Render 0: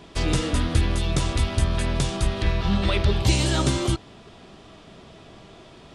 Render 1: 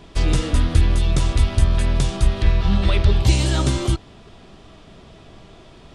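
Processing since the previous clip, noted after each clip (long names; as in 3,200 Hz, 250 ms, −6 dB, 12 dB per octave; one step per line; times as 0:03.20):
low-shelf EQ 68 Hz +11.5 dB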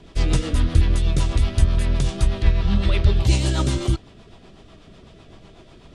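rotating-speaker cabinet horn 8 Hz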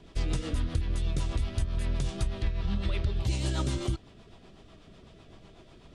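downward compressor, threshold −18 dBFS, peak gain reduction 9.5 dB
level −6.5 dB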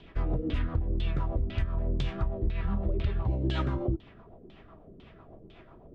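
auto-filter low-pass saw down 2 Hz 300–3,500 Hz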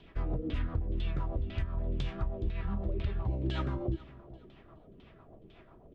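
repeating echo 419 ms, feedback 34%, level −19.5 dB
level −4 dB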